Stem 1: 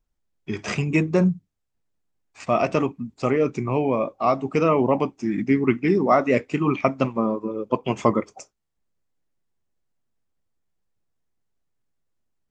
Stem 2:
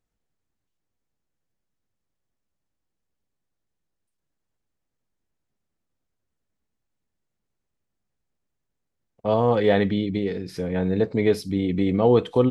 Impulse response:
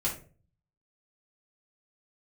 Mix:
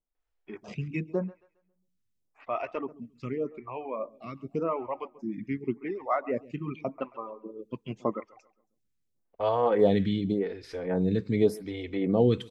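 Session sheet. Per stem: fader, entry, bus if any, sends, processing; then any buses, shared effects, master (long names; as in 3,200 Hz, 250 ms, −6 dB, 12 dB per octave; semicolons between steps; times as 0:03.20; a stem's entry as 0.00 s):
−8.0 dB, 0.00 s, no send, echo send −20 dB, low-pass filter 3,300 Hz 12 dB per octave; reverb reduction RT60 1.6 s
−1.5 dB, 0.15 s, no send, echo send −23 dB, no processing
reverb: not used
echo: repeating echo 136 ms, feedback 32%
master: phaser with staggered stages 0.87 Hz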